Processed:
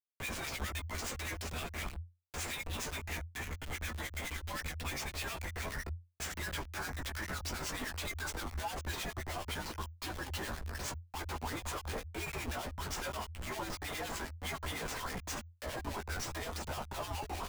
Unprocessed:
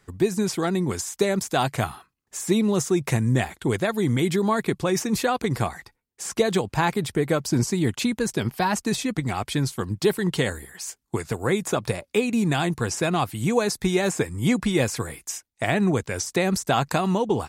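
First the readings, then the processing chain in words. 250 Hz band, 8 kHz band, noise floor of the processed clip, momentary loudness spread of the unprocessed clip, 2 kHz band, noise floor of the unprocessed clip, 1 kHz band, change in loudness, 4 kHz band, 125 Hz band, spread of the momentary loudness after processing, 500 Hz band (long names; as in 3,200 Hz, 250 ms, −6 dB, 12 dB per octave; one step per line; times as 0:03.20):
−23.5 dB, −12.0 dB, −57 dBFS, 7 LU, −10.0 dB, −74 dBFS, −14.0 dB, −15.5 dB, −10.0 dB, −16.5 dB, 3 LU, −21.5 dB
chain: Bessel high-pass filter 390 Hz, order 6
high-pass filter sweep 2,400 Hz → 1,000 Hz, 0:05.30–0:08.70
downward compressor 16 to 1, threshold −29 dBFS, peak gain reduction 15 dB
high-shelf EQ 7,200 Hz −9.5 dB
comparator with hysteresis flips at −39 dBFS
multi-voice chorus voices 4, 0.19 Hz, delay 17 ms, depth 5 ms
two-band tremolo in antiphase 9.7 Hz, depth 70%, crossover 1,700 Hz
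frequency shifter −87 Hz
level +4 dB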